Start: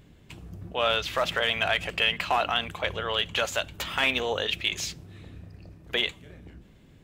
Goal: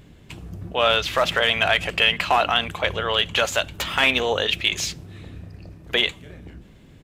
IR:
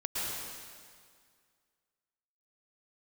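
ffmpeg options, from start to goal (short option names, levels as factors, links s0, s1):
-af "aresample=32000,aresample=44100,volume=2"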